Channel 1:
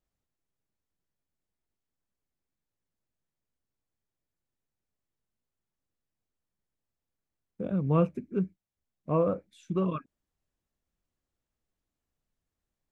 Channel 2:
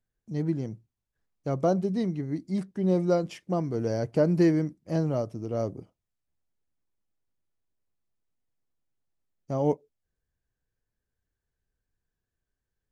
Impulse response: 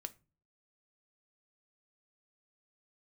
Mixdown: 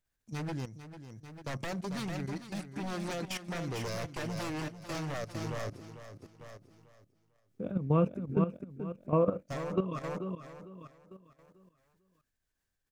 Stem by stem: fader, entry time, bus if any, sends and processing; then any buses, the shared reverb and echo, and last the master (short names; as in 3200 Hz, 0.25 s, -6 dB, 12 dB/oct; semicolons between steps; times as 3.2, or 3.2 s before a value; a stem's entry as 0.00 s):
+1.5 dB, 0.00 s, no send, echo send -7 dB, dry
+0.5 dB, 0.00 s, send -17 dB, echo send -4.5 dB, EQ curve 100 Hz 0 dB, 160 Hz -4 dB, 400 Hz -5 dB, 1700 Hz +8 dB; compressor 6:1, threshold -27 dBFS, peak gain reduction 8 dB; wavefolder -30.5 dBFS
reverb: on, RT60 0.35 s, pre-delay 5 ms
echo: feedback echo 0.447 s, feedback 39%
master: level quantiser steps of 12 dB